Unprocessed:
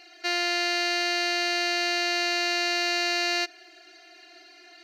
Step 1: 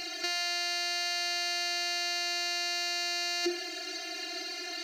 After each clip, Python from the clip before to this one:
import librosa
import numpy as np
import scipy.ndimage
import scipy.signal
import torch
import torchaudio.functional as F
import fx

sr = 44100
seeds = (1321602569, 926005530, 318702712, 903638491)

y = fx.bass_treble(x, sr, bass_db=13, treble_db=9)
y = fx.hum_notches(y, sr, base_hz=50, count=7)
y = fx.over_compress(y, sr, threshold_db=-33.0, ratio=-1.0)
y = y * librosa.db_to_amplitude(1.0)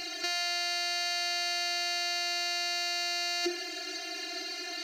y = fx.doubler(x, sr, ms=13.0, db=-13.5)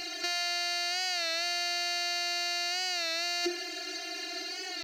y = fx.record_warp(x, sr, rpm=33.33, depth_cents=100.0)